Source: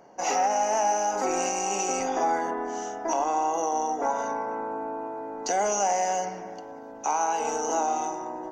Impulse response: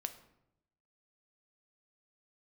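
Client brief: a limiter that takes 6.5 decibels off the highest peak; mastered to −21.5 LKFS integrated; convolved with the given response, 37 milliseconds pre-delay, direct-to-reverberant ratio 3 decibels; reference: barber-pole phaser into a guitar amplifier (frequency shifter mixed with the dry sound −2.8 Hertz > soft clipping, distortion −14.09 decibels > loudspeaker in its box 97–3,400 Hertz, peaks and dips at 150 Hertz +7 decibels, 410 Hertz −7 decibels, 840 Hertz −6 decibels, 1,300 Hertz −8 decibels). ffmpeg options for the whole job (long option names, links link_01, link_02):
-filter_complex "[0:a]alimiter=limit=-21.5dB:level=0:latency=1,asplit=2[link_01][link_02];[1:a]atrim=start_sample=2205,adelay=37[link_03];[link_02][link_03]afir=irnorm=-1:irlink=0,volume=-1.5dB[link_04];[link_01][link_04]amix=inputs=2:normalize=0,asplit=2[link_05][link_06];[link_06]afreqshift=-2.8[link_07];[link_05][link_07]amix=inputs=2:normalize=1,asoftclip=threshold=-27.5dB,highpass=97,equalizer=frequency=150:width_type=q:width=4:gain=7,equalizer=frequency=410:width_type=q:width=4:gain=-7,equalizer=frequency=840:width_type=q:width=4:gain=-6,equalizer=frequency=1300:width_type=q:width=4:gain=-8,lowpass=frequency=3400:width=0.5412,lowpass=frequency=3400:width=1.3066,volume=17.5dB"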